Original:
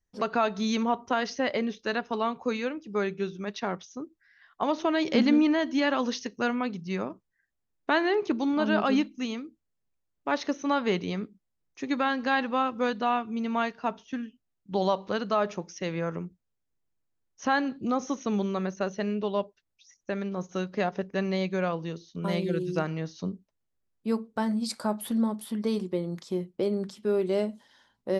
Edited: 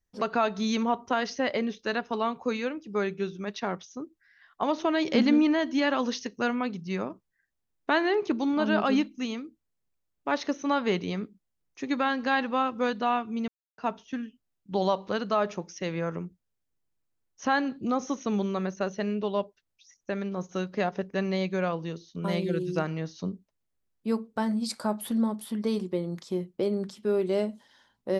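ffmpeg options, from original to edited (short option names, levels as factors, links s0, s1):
-filter_complex "[0:a]asplit=3[s0][s1][s2];[s0]atrim=end=13.48,asetpts=PTS-STARTPTS,afade=t=out:st=13.476:d=0.004:c=hsin[s3];[s1]atrim=start=13.48:end=13.78,asetpts=PTS-STARTPTS,volume=0[s4];[s2]atrim=start=13.78,asetpts=PTS-STARTPTS,afade=t=in:d=0.004:c=hsin[s5];[s3][s4][s5]concat=n=3:v=0:a=1"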